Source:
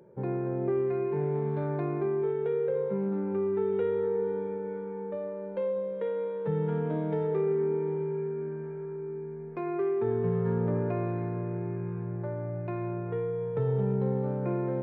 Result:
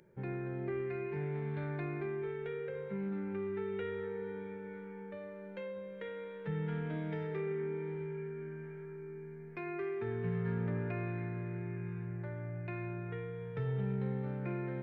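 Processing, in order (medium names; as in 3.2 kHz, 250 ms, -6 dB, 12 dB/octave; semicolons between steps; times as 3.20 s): graphic EQ 125/250/500/1000/2000 Hz -6/-7/-12/-10/+5 dB; trim +2 dB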